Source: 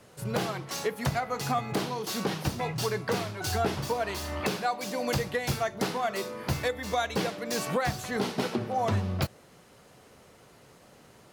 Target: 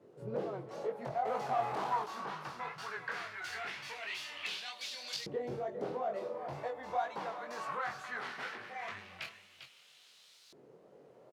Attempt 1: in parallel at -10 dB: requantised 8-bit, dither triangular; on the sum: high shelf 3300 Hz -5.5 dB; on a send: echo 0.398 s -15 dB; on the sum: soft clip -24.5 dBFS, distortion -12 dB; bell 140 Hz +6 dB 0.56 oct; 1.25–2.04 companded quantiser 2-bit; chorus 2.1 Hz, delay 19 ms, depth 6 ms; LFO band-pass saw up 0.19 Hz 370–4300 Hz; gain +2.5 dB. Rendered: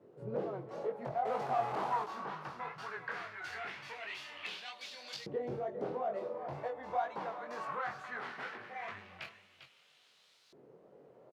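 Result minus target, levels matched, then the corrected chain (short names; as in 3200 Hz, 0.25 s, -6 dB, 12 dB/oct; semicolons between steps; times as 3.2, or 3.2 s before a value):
8000 Hz band -7.0 dB
in parallel at -10 dB: requantised 8-bit, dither triangular; on the sum: high shelf 3300 Hz +5 dB; on a send: echo 0.398 s -15 dB; on the sum: soft clip -24.5 dBFS, distortion -11 dB; bell 140 Hz +6 dB 0.56 oct; 1.25–2.04 companded quantiser 2-bit; chorus 2.1 Hz, delay 19 ms, depth 6 ms; LFO band-pass saw up 0.19 Hz 370–4300 Hz; gain +2.5 dB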